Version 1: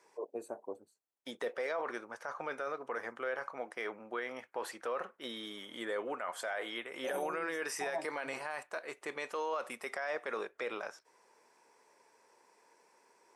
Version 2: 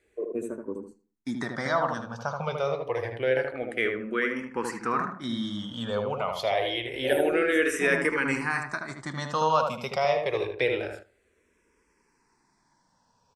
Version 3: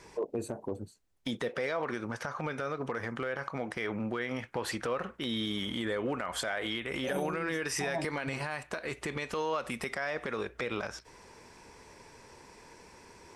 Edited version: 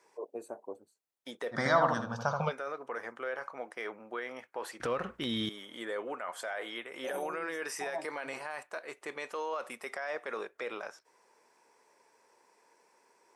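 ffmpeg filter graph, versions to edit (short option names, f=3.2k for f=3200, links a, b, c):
-filter_complex "[0:a]asplit=3[a][b][c];[a]atrim=end=1.57[d];[1:a]atrim=start=1.51:end=2.53[e];[b]atrim=start=2.47:end=4.802[f];[2:a]atrim=start=4.798:end=5.492[g];[c]atrim=start=5.488[h];[d][e]acrossfade=d=0.06:c1=tri:c2=tri[i];[i][f]acrossfade=d=0.06:c1=tri:c2=tri[j];[j][g]acrossfade=d=0.004:c1=hsin:c2=hsin[k];[k][h]acrossfade=d=0.004:c1=hsin:c2=hsin"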